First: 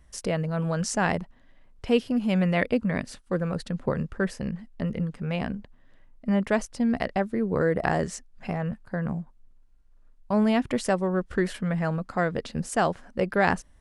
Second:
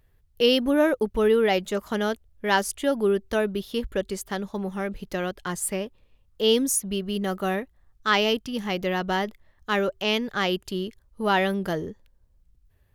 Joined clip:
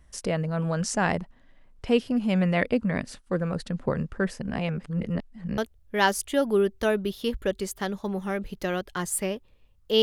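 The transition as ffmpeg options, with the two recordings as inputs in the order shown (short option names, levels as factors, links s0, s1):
-filter_complex "[0:a]apad=whole_dur=10.02,atrim=end=10.02,asplit=2[s0][s1];[s0]atrim=end=4.422[s2];[s1]atrim=start=4.418:end=5.582,asetpts=PTS-STARTPTS,areverse[s3];[1:a]atrim=start=2.078:end=6.52[s4];[s2][s3]acrossfade=d=0.004:c1=hsin:c2=hsin[s5];[s5][s4]acrossfade=d=0.004:c1=hsin:c2=hsin"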